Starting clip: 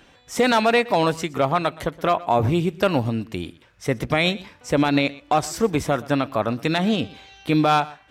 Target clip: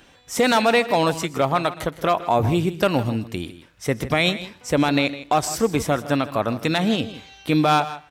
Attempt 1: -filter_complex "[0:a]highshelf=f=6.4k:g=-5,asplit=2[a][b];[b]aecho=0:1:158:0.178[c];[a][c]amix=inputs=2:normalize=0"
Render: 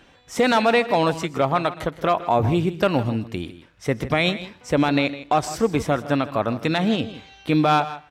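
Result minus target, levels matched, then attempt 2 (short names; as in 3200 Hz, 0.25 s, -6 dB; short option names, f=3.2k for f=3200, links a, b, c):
8000 Hz band -6.0 dB
-filter_complex "[0:a]highshelf=f=6.4k:g=6.5,asplit=2[a][b];[b]aecho=0:1:158:0.178[c];[a][c]amix=inputs=2:normalize=0"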